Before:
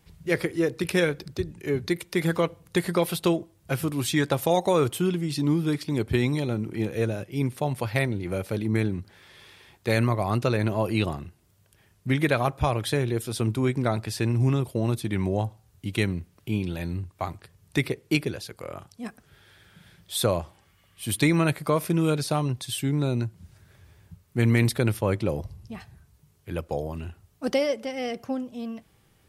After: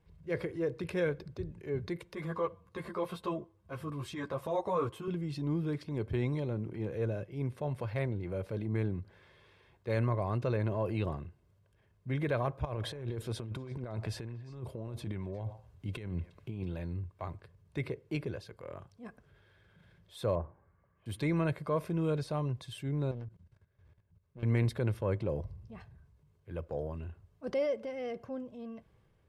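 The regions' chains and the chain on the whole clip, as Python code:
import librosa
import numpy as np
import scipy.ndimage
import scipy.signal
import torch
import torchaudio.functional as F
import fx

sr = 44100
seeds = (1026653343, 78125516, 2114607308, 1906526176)

y = fx.chain(x, sr, fx.peak_eq(hz=1100.0, db=10.0, octaves=0.36),
    fx.ensemble(), at=(2.15, 5.08))
y = fx.chain(y, sr, fx.over_compress(threshold_db=-29.0, ratio=-0.5),
    fx.echo_stepped(ms=119, hz=740.0, octaves=1.4, feedback_pct=70, wet_db=-11.0), at=(12.65, 16.64))
y = fx.chain(y, sr, fx.lowpass(hz=1600.0, slope=24),
    fx.hum_notches(base_hz=50, count=9), at=(20.35, 21.06))
y = fx.chain(y, sr, fx.level_steps(step_db=18),
    fx.doppler_dist(depth_ms=0.68), at=(23.11, 24.43))
y = fx.lowpass(y, sr, hz=1200.0, slope=6)
y = y + 0.35 * np.pad(y, (int(1.9 * sr / 1000.0), 0))[:len(y)]
y = fx.transient(y, sr, attack_db=-4, sustain_db=3)
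y = y * 10.0 ** (-7.0 / 20.0)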